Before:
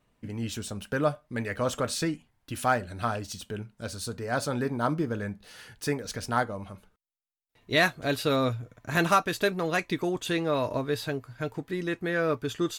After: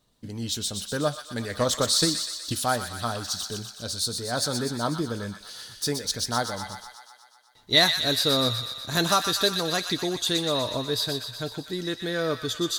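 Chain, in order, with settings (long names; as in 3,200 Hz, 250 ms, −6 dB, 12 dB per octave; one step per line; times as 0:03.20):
on a send: delay with a high-pass on its return 123 ms, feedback 67%, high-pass 1,400 Hz, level −6 dB
0:01.35–0:02.64: on the sum: transient designer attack +7 dB, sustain +2 dB
high shelf with overshoot 3,100 Hz +7 dB, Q 3
0:06.51–0:07.92: hollow resonant body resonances 840/2,000 Hz, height 15 dB → 11 dB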